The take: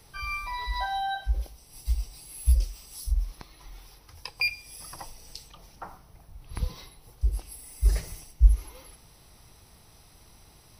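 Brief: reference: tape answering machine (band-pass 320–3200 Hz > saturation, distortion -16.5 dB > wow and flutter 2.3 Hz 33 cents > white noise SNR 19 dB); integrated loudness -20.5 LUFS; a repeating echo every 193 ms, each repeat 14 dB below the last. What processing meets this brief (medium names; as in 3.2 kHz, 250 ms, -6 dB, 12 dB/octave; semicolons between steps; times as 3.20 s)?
band-pass 320–3200 Hz; feedback delay 193 ms, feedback 20%, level -14 dB; saturation -25.5 dBFS; wow and flutter 2.3 Hz 33 cents; white noise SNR 19 dB; trim +17.5 dB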